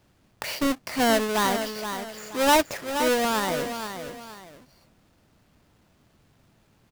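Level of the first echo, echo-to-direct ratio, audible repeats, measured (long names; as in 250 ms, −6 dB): −8.5 dB, −8.0 dB, 2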